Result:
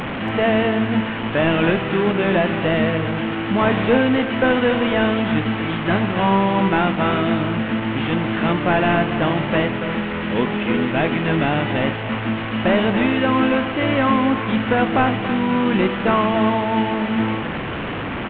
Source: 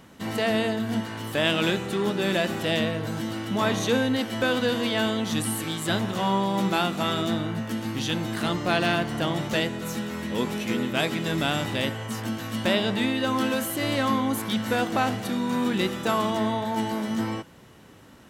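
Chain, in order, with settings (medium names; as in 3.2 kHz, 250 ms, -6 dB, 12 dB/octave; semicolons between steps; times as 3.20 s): one-bit delta coder 16 kbps, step -27 dBFS; on a send: delay 284 ms -12 dB; on the sum: trim +7 dB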